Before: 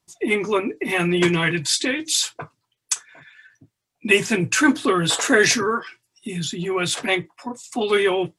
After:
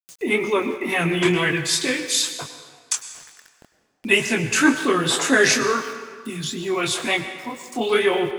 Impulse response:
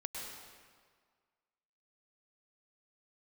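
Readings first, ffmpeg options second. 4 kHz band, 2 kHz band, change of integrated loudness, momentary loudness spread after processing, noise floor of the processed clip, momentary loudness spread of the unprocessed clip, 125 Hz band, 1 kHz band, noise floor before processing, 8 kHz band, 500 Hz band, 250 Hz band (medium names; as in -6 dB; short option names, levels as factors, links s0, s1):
0.0 dB, +0.5 dB, 0.0 dB, 15 LU, -64 dBFS, 11 LU, -2.0 dB, +0.5 dB, -80 dBFS, 0.0 dB, 0.0 dB, -0.5 dB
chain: -filter_complex "[0:a]flanger=delay=20:depth=7.2:speed=2.1,aeval=exprs='val(0)*gte(abs(val(0)),0.00596)':c=same,acompressor=mode=upward:threshold=0.00708:ratio=2.5,asplit=2[s0][s1];[1:a]atrim=start_sample=2205,lowshelf=f=140:g=-9[s2];[s1][s2]afir=irnorm=-1:irlink=0,volume=0.596[s3];[s0][s3]amix=inputs=2:normalize=0"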